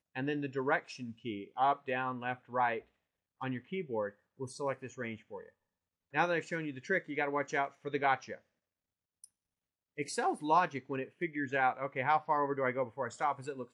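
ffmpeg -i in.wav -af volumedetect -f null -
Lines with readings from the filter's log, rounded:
mean_volume: -35.7 dB
max_volume: -16.0 dB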